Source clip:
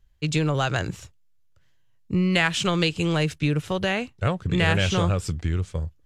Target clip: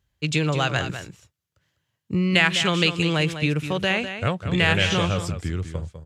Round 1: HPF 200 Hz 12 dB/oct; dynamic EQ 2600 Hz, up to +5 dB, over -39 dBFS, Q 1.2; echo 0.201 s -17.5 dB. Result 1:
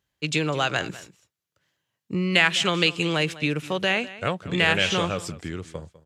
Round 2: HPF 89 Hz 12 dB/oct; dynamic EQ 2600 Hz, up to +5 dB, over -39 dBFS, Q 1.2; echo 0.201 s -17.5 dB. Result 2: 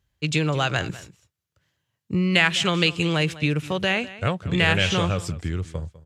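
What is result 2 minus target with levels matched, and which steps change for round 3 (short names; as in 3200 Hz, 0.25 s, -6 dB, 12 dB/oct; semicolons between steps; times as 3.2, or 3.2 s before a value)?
echo-to-direct -7.5 dB
change: echo 0.201 s -10 dB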